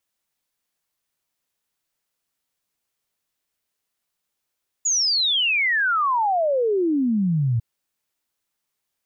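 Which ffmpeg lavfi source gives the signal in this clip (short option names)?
-f lavfi -i "aevalsrc='0.133*clip(min(t,2.75-t)/0.01,0,1)*sin(2*PI*7000*2.75/log(110/7000)*(exp(log(110/7000)*t/2.75)-1))':d=2.75:s=44100"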